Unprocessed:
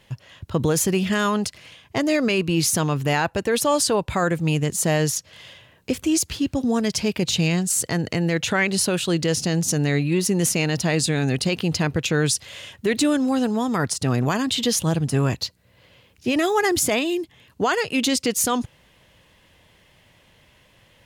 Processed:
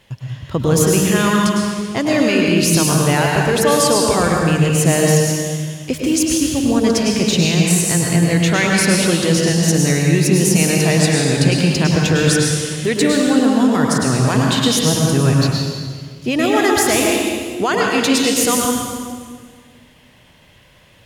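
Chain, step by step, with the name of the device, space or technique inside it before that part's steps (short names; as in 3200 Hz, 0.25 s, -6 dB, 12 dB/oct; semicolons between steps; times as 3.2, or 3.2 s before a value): stairwell (reverb RT60 1.8 s, pre-delay 98 ms, DRR -1.5 dB); gain +2.5 dB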